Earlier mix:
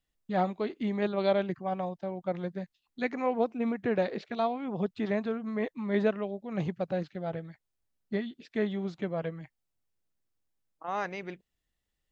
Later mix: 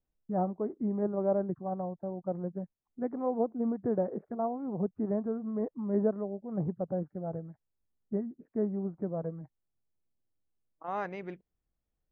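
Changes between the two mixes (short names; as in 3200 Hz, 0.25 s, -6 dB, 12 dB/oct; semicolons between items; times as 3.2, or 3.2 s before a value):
first voice: add Bessel low-pass 830 Hz, order 8; master: add LPF 1200 Hz 6 dB/oct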